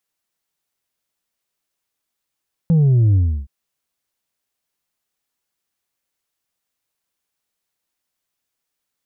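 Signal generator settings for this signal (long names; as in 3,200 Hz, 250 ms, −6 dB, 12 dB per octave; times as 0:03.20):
bass drop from 170 Hz, over 0.77 s, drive 3 dB, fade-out 0.32 s, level −11 dB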